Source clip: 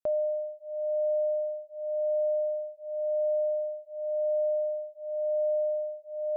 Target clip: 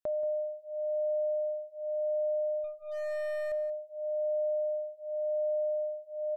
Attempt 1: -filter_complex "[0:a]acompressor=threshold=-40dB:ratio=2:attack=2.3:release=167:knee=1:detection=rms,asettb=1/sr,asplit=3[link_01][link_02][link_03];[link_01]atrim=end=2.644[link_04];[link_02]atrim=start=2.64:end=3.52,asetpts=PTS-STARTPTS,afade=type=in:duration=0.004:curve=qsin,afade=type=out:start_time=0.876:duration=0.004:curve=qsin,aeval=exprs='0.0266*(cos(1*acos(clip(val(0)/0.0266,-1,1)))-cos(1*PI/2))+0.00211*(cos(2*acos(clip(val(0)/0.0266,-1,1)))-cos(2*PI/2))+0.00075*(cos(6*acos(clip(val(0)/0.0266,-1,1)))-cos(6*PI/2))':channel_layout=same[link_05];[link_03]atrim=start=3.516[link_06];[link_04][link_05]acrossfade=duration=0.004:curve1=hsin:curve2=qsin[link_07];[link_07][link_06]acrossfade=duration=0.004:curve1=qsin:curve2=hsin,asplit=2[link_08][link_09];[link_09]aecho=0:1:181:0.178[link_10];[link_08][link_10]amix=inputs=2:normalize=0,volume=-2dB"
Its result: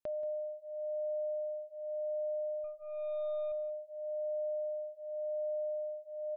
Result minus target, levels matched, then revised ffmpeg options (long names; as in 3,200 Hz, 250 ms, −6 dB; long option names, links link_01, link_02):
downward compressor: peak gain reduction +5.5 dB
-filter_complex "[0:a]acompressor=threshold=-29dB:ratio=2:attack=2.3:release=167:knee=1:detection=rms,asettb=1/sr,asplit=3[link_01][link_02][link_03];[link_01]atrim=end=2.644[link_04];[link_02]atrim=start=2.64:end=3.52,asetpts=PTS-STARTPTS,afade=type=in:duration=0.004:curve=qsin,afade=type=out:start_time=0.876:duration=0.004:curve=qsin,aeval=exprs='0.0266*(cos(1*acos(clip(val(0)/0.0266,-1,1)))-cos(1*PI/2))+0.00211*(cos(2*acos(clip(val(0)/0.0266,-1,1)))-cos(2*PI/2))+0.00075*(cos(6*acos(clip(val(0)/0.0266,-1,1)))-cos(6*PI/2))':channel_layout=same[link_05];[link_03]atrim=start=3.516[link_06];[link_04][link_05]acrossfade=duration=0.004:curve1=hsin:curve2=qsin[link_07];[link_07][link_06]acrossfade=duration=0.004:curve1=qsin:curve2=hsin,asplit=2[link_08][link_09];[link_09]aecho=0:1:181:0.178[link_10];[link_08][link_10]amix=inputs=2:normalize=0,volume=-2dB"